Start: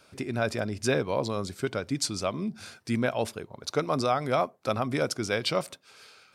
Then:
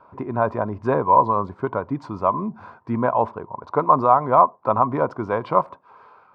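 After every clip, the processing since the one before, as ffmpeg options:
-af "lowpass=f=1k:t=q:w=11,volume=3.5dB"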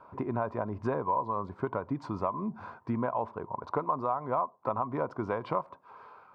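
-af "acompressor=threshold=-26dB:ratio=4,volume=-2.5dB"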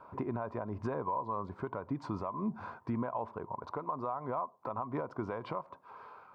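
-af "alimiter=level_in=1dB:limit=-24dB:level=0:latency=1:release=207,volume=-1dB"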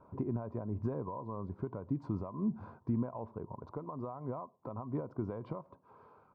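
-af "firequalizer=gain_entry='entry(110,0);entry(750,-12);entry(1800,-19)':delay=0.05:min_phase=1,volume=4dB"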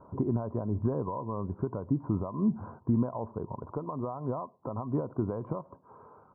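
-af "lowpass=f=1.4k:w=0.5412,lowpass=f=1.4k:w=1.3066,volume=6.5dB"

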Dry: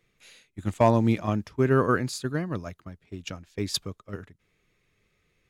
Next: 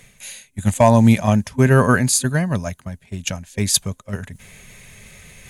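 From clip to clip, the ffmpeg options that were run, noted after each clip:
-af "superequalizer=6b=0.251:7b=0.447:10b=0.501:15b=2.51:16b=3.98,areverse,acompressor=mode=upward:threshold=-40dB:ratio=2.5,areverse,alimiter=level_in=12.5dB:limit=-1dB:release=50:level=0:latency=1,volume=-1dB"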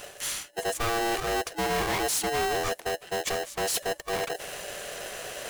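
-af "areverse,acompressor=threshold=-23dB:ratio=4,areverse,asoftclip=type=tanh:threshold=-30.5dB,aeval=exprs='val(0)*sgn(sin(2*PI*580*n/s))':c=same,volume=5.5dB"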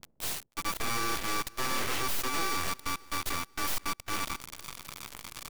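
-filter_complex "[0:a]acrossover=split=240[a][b];[b]acrusher=bits=4:mix=0:aa=0.000001[c];[a][c]amix=inputs=2:normalize=0,aeval=exprs='abs(val(0))':c=same,aecho=1:1:489|978|1467:0.0668|0.0261|0.0102,volume=-3dB"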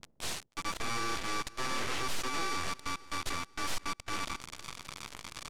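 -filter_complex "[0:a]asplit=2[a][b];[b]alimiter=level_in=3dB:limit=-24dB:level=0:latency=1,volume=-3dB,volume=1dB[c];[a][c]amix=inputs=2:normalize=0,lowpass=8k,volume=-6dB"

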